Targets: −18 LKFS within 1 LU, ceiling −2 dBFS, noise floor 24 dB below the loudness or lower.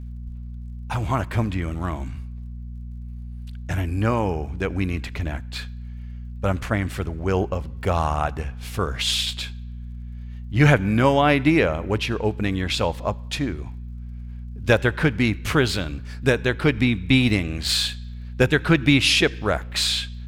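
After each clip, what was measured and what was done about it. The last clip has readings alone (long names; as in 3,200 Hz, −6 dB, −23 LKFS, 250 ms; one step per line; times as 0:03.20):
crackle rate 36 per second; mains hum 60 Hz; hum harmonics up to 240 Hz; level of the hum −31 dBFS; integrated loudness −22.0 LKFS; sample peak −3.5 dBFS; target loudness −18.0 LKFS
→ click removal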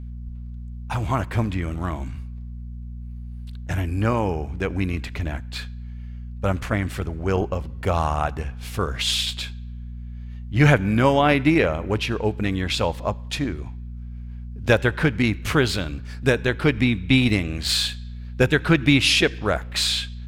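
crackle rate 0.25 per second; mains hum 60 Hz; hum harmonics up to 240 Hz; level of the hum −32 dBFS
→ hum removal 60 Hz, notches 4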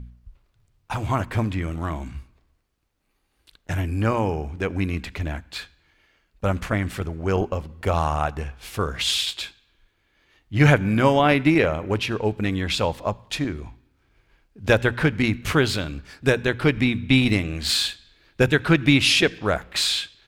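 mains hum none found; integrated loudness −22.5 LKFS; sample peak −3.5 dBFS; target loudness −18.0 LKFS
→ level +4.5 dB
brickwall limiter −2 dBFS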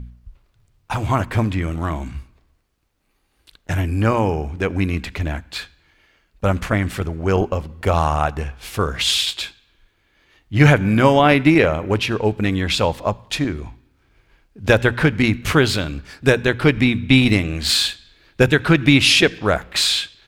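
integrated loudness −18.0 LKFS; sample peak −2.0 dBFS; background noise floor −64 dBFS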